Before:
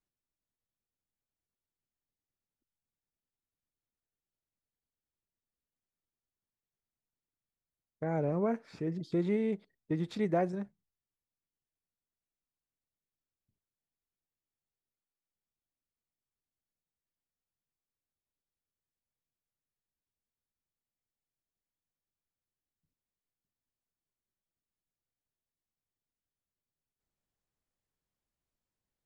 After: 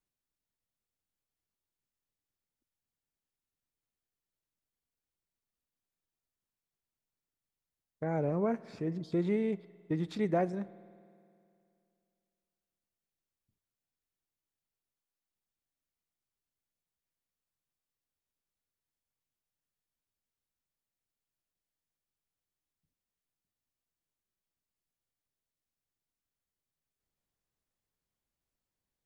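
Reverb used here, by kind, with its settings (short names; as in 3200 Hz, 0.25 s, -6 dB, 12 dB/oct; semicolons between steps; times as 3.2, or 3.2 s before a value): spring tank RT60 2.5 s, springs 51 ms, chirp 25 ms, DRR 19.5 dB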